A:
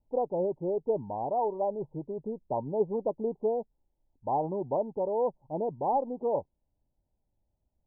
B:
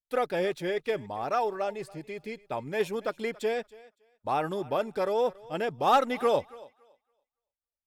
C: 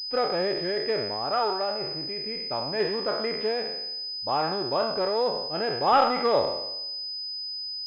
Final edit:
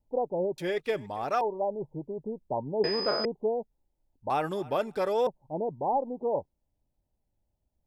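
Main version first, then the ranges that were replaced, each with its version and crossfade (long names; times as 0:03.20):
A
0:00.58–0:01.41: punch in from B
0:02.84–0:03.25: punch in from C
0:04.30–0:05.27: punch in from B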